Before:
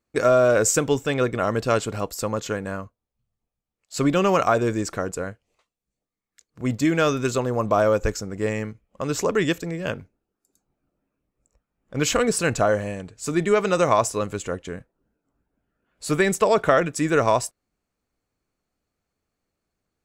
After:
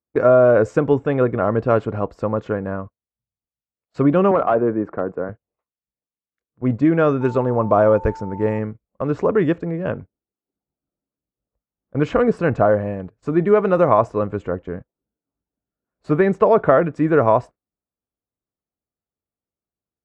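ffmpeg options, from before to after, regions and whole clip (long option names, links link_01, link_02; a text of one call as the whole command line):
ffmpeg -i in.wav -filter_complex "[0:a]asettb=1/sr,asplit=3[link_01][link_02][link_03];[link_01]atrim=end=4.314[link_04];[link_02]atrim=start=4.31:end=5.29,asetpts=PTS-STARTPTS,afade=type=in:duration=0.004:curve=qsin,afade=type=out:start_time=0.976:duration=0.004:curve=qsin,acrossover=split=160 2100:gain=0.224 1 0.0708[link_05][link_06][link_07];[link_05][link_06][link_07]amix=inputs=3:normalize=0,asoftclip=type=hard:threshold=-14.5dB[link_08];[link_03]atrim=start=5.286[link_09];[link_04][link_08]acrossfade=duration=0.004:curve1=hsin:curve2=qsin[link_10];[link_10][link_09]acrossfade=duration=0.004:curve1=qsin:curve2=hsin,asettb=1/sr,asplit=3[link_11][link_12][link_13];[link_11]atrim=end=7.214[link_14];[link_12]atrim=start=7.21:end=8.59,asetpts=PTS-STARTPTS,afade=type=in:duration=0.004:curve=qsin,afade=type=out:start_time=1.376:duration=0.004:curve=qsin,lowpass=9200,highshelf=frequency=5600:gain=9,aeval=exprs='val(0)+0.0141*sin(2*PI*890*n/s)':channel_layout=same[link_15];[link_13]atrim=start=8.586[link_16];[link_14][link_15]acrossfade=duration=0.004:curve1=hsin:curve2=qsin[link_17];[link_17][link_16]acrossfade=duration=0.004:curve1=qsin:curve2=hsin,highpass=44,agate=range=-17dB:threshold=-37dB:ratio=16:detection=peak,lowpass=1200,volume=5dB" out.wav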